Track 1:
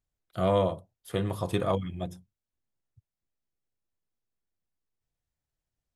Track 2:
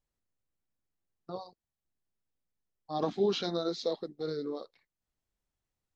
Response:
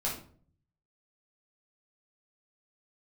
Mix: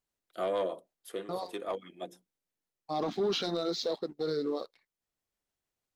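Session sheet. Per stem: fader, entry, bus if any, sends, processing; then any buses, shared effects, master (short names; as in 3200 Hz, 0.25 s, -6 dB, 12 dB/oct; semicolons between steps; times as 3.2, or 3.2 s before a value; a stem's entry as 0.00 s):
+1.0 dB, 0.00 s, no send, HPF 290 Hz 24 dB/oct; rotary speaker horn 6.3 Hz; soft clip -19.5 dBFS, distortion -20 dB; auto duck -8 dB, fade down 0.25 s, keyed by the second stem
+1.5 dB, 0.00 s, no send, low shelf 120 Hz -10.5 dB; sample leveller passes 1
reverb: off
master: limiter -24 dBFS, peak gain reduction 6.5 dB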